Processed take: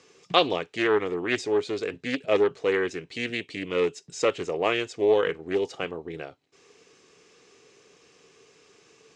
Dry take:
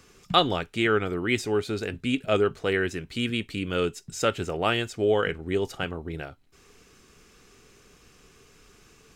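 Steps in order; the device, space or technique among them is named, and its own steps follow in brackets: full-range speaker at full volume (Doppler distortion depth 0.27 ms; speaker cabinet 200–7500 Hz, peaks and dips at 220 Hz -8 dB, 470 Hz +5 dB, 1400 Hz -6 dB)

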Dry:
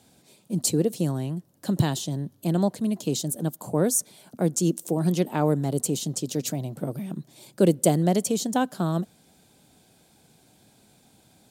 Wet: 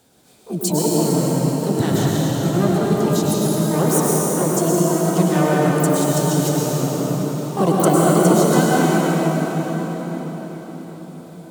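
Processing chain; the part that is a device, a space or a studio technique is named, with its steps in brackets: shimmer-style reverb (harmoniser +12 st -5 dB; reverb RT60 5.5 s, pre-delay 96 ms, DRR -6 dB)

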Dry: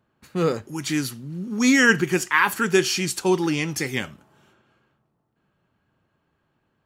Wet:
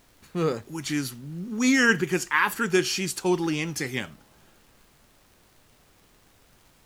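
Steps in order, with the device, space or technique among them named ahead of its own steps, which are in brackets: vinyl LP (wow and flutter; crackle; pink noise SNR 31 dB); gain -3.5 dB

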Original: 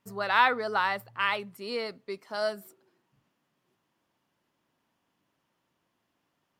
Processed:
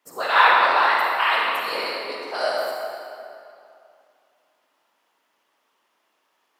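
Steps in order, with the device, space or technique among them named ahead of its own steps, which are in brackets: 1.13–1.86 high shelf 10000 Hz +6 dB; whispering ghost (whisperiser; HPF 560 Hz 12 dB/oct; reverb RT60 2.6 s, pre-delay 38 ms, DRR -2.5 dB); gain +5.5 dB

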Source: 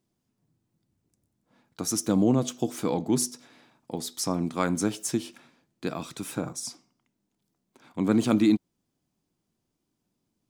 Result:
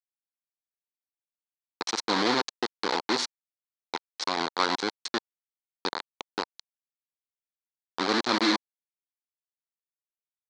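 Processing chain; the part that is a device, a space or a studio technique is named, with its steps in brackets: hand-held game console (bit-crush 4-bit; speaker cabinet 440–5400 Hz, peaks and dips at 620 Hz -7 dB, 940 Hz +4 dB, 2700 Hz -6 dB, 4200 Hz +9 dB); gain +2 dB

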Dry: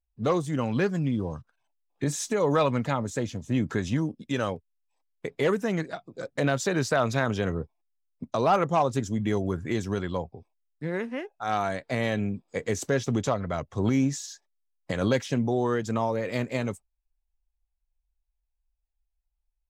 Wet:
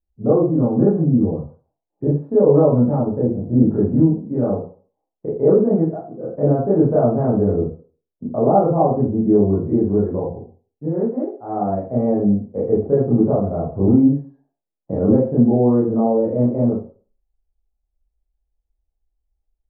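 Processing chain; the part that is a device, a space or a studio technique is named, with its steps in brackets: next room (LPF 690 Hz 24 dB/oct; reverb RT60 0.40 s, pre-delay 21 ms, DRR -7.5 dB); gain +2.5 dB

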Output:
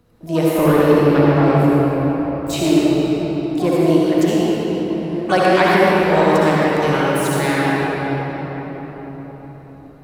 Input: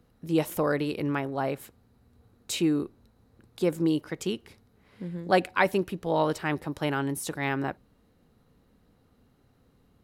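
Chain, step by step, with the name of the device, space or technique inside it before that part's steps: 0.58–2.53 tilt -2 dB/oct; shimmer-style reverb (harmoniser +12 st -11 dB; reverb RT60 5.0 s, pre-delay 56 ms, DRR -7 dB); gain +4.5 dB

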